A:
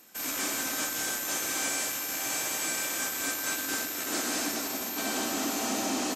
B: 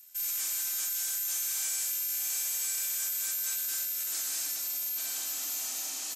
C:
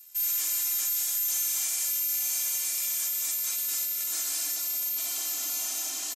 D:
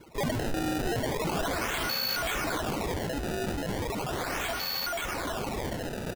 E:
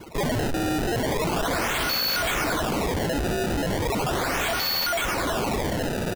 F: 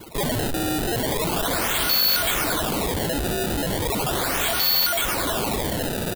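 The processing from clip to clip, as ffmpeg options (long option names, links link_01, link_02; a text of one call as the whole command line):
ffmpeg -i in.wav -af "aderivative" out.wav
ffmpeg -i in.wav -af "aecho=1:1:2.9:0.99" out.wav
ffmpeg -i in.wav -af "acrusher=samples=23:mix=1:aa=0.000001:lfo=1:lforange=36.8:lforate=0.37,volume=-1.5dB" out.wav
ffmpeg -i in.wav -af "aeval=exprs='0.0376*(abs(mod(val(0)/0.0376+3,4)-2)-1)':channel_layout=same,acrusher=bits=2:mode=log:mix=0:aa=0.000001,volume=9dB" out.wav
ffmpeg -i in.wav -af "aexciter=amount=2:drive=3.3:freq=3200" out.wav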